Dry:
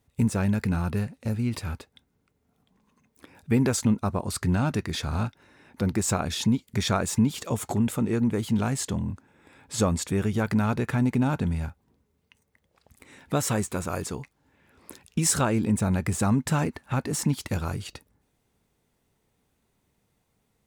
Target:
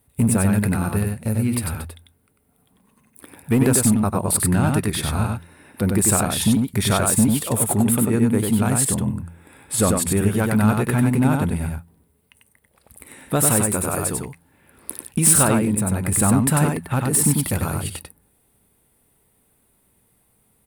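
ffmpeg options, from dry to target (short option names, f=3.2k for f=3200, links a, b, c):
-filter_complex "[0:a]asettb=1/sr,asplit=3[a][b][c];[a]atrim=end=15.594[d];[b]atrim=start=15.59:end=16.12,asetpts=PTS-STARTPTS,afade=t=in:d=0.004:c=qsin,afade=t=out:st=0.526:d=0.004:c=qsin,acompressor=threshold=-27dB:ratio=2[e];[c]atrim=start=16.116[f];[d][e]acrossfade=d=0.004:c1=hsin:c2=qsin[g];[g][f]acrossfade=d=0.004:c1=qsin:c2=hsin,highshelf=f=7.9k:t=q:w=3:g=8,bandreject=f=84.78:t=h:w=4,bandreject=f=169.56:t=h:w=4,volume=15.5dB,asoftclip=hard,volume=-15.5dB,aecho=1:1:95:0.668,volume=5dB"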